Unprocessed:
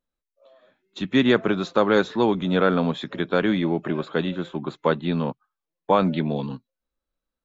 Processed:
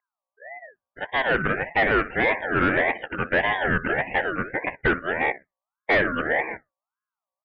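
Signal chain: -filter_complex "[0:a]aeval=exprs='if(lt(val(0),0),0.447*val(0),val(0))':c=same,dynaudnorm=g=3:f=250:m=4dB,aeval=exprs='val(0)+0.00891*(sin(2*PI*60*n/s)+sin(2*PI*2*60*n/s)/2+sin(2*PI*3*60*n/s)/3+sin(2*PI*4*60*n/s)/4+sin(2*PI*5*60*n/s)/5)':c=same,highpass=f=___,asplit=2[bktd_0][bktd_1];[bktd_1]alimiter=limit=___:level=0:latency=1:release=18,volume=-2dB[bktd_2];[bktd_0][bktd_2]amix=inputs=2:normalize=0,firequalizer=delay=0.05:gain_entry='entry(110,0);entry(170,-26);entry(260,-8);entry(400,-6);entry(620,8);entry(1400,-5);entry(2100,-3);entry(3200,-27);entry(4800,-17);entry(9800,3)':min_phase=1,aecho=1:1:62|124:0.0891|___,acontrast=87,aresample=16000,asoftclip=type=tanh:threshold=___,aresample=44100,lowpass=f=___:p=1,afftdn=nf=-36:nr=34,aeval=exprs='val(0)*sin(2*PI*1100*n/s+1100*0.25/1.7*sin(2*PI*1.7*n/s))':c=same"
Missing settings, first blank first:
410, -13.5dB, 0.016, -12.5dB, 1500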